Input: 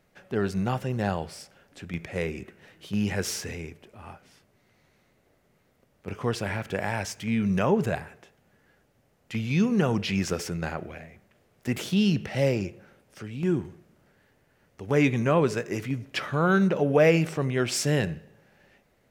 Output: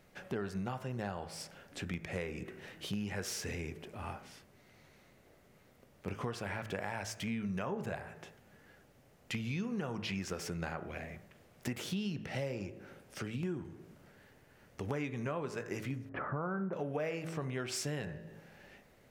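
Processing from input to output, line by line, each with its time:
0:16.09–0:16.73: low-pass filter 1,400 Hz 24 dB per octave
whole clip: hum removal 54.41 Hz, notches 36; dynamic equaliser 1,100 Hz, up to +4 dB, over −38 dBFS, Q 0.77; downward compressor 6 to 1, threshold −39 dBFS; level +3 dB

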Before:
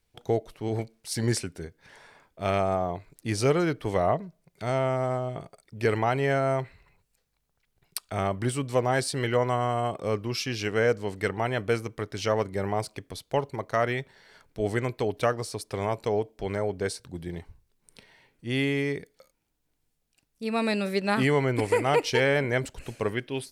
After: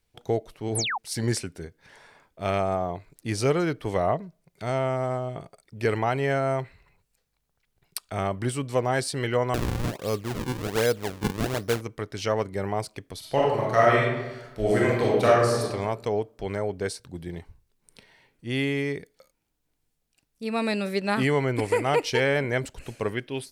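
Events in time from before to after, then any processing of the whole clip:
0:00.75–0:00.98: sound drawn into the spectrogram fall 690–12,000 Hz −28 dBFS
0:09.54–0:11.81: sample-and-hold swept by an LFO 39×, swing 160% 1.3 Hz
0:13.18–0:15.61: thrown reverb, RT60 1.1 s, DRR −5.5 dB

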